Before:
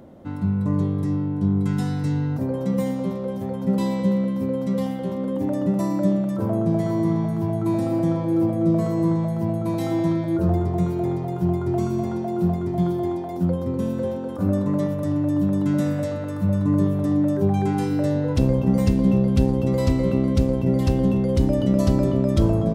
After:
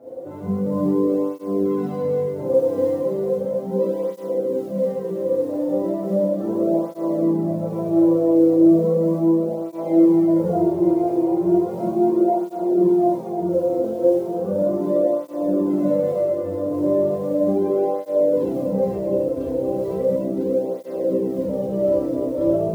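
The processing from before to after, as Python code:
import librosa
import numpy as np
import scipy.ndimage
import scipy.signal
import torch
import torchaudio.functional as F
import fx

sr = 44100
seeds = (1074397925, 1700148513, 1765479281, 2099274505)

y = fx.bandpass_q(x, sr, hz=500.0, q=3.6)
y = fx.rider(y, sr, range_db=10, speed_s=2.0)
y = fx.quant_companded(y, sr, bits=8)
y = fx.echo_diffused(y, sr, ms=1173, feedback_pct=64, wet_db=-10.0)
y = fx.rev_schroeder(y, sr, rt60_s=1.1, comb_ms=33, drr_db=-9.0)
y = fx.flanger_cancel(y, sr, hz=0.36, depth_ms=5.5)
y = F.gain(torch.from_numpy(y), 4.5).numpy()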